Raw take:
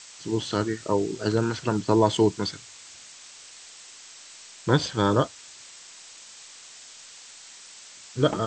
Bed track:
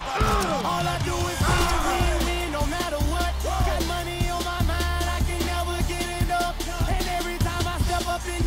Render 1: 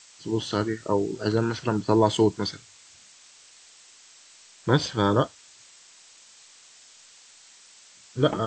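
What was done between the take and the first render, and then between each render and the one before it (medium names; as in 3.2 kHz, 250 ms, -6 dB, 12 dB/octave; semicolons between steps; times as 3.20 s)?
noise print and reduce 6 dB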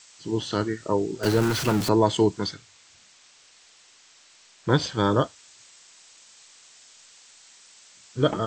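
1.23–1.89 s: jump at every zero crossing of -24.5 dBFS; 2.53–4.70 s: distance through air 51 m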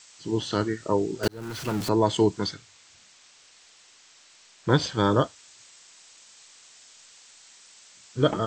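1.28–2.53 s: fade in equal-power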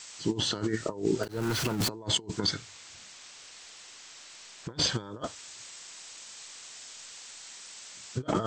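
compressor with a negative ratio -30 dBFS, ratio -0.5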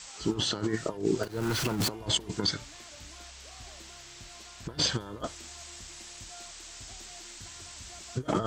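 add bed track -27 dB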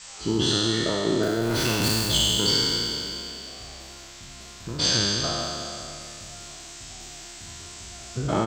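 spectral sustain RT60 2.92 s; doubling 35 ms -11 dB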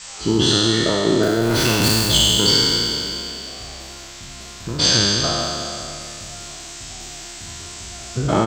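trim +6.5 dB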